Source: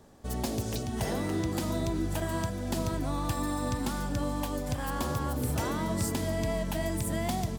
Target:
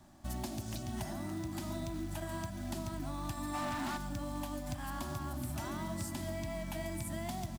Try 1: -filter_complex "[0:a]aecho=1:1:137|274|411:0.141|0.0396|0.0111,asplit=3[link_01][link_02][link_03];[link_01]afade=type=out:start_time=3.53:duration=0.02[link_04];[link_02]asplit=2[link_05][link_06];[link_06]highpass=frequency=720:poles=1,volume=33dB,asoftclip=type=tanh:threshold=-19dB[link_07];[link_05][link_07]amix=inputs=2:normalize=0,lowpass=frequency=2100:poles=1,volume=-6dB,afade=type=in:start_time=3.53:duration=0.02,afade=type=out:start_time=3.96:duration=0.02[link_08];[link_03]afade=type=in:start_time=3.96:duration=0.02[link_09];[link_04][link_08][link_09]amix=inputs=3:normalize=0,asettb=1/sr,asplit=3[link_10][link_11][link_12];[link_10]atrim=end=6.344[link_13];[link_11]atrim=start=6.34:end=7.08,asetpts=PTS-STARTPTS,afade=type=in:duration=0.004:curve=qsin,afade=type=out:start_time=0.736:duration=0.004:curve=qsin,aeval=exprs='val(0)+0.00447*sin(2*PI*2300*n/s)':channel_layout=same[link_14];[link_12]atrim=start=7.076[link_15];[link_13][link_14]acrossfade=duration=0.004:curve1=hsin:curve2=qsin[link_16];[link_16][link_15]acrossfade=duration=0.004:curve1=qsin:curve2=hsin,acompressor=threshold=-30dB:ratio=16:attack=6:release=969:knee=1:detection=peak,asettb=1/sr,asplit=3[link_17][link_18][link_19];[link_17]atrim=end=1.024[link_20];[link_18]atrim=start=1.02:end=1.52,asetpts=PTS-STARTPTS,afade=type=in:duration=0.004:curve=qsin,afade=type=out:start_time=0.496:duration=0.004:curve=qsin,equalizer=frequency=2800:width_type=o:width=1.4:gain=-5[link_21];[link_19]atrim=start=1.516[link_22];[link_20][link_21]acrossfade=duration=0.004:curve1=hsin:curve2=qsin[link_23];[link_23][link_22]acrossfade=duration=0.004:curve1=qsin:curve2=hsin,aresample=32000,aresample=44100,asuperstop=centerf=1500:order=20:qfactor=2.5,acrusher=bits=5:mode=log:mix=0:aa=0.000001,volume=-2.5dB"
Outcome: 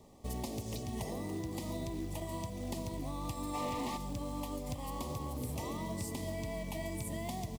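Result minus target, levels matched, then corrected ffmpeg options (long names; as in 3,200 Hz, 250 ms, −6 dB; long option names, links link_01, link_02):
2,000 Hz band −4.0 dB
-filter_complex "[0:a]aecho=1:1:137|274|411:0.141|0.0396|0.0111,asplit=3[link_01][link_02][link_03];[link_01]afade=type=out:start_time=3.53:duration=0.02[link_04];[link_02]asplit=2[link_05][link_06];[link_06]highpass=frequency=720:poles=1,volume=33dB,asoftclip=type=tanh:threshold=-19dB[link_07];[link_05][link_07]amix=inputs=2:normalize=0,lowpass=frequency=2100:poles=1,volume=-6dB,afade=type=in:start_time=3.53:duration=0.02,afade=type=out:start_time=3.96:duration=0.02[link_08];[link_03]afade=type=in:start_time=3.96:duration=0.02[link_09];[link_04][link_08][link_09]amix=inputs=3:normalize=0,asettb=1/sr,asplit=3[link_10][link_11][link_12];[link_10]atrim=end=6.344[link_13];[link_11]atrim=start=6.34:end=7.08,asetpts=PTS-STARTPTS,afade=type=in:duration=0.004:curve=qsin,afade=type=out:start_time=0.736:duration=0.004:curve=qsin,aeval=exprs='val(0)+0.00447*sin(2*PI*2300*n/s)':channel_layout=same[link_14];[link_12]atrim=start=7.076[link_15];[link_13][link_14]acrossfade=duration=0.004:curve1=hsin:curve2=qsin[link_16];[link_16][link_15]acrossfade=duration=0.004:curve1=qsin:curve2=hsin,acompressor=threshold=-30dB:ratio=16:attack=6:release=969:knee=1:detection=peak,asettb=1/sr,asplit=3[link_17][link_18][link_19];[link_17]atrim=end=1.024[link_20];[link_18]atrim=start=1.02:end=1.52,asetpts=PTS-STARTPTS,afade=type=in:duration=0.004:curve=qsin,afade=type=out:start_time=0.496:duration=0.004:curve=qsin,equalizer=frequency=2800:width_type=o:width=1.4:gain=-5[link_21];[link_19]atrim=start=1.516[link_22];[link_20][link_21]acrossfade=duration=0.004:curve1=hsin:curve2=qsin[link_23];[link_23][link_22]acrossfade=duration=0.004:curve1=qsin:curve2=hsin,aresample=32000,aresample=44100,asuperstop=centerf=460:order=20:qfactor=2.5,acrusher=bits=5:mode=log:mix=0:aa=0.000001,volume=-2.5dB"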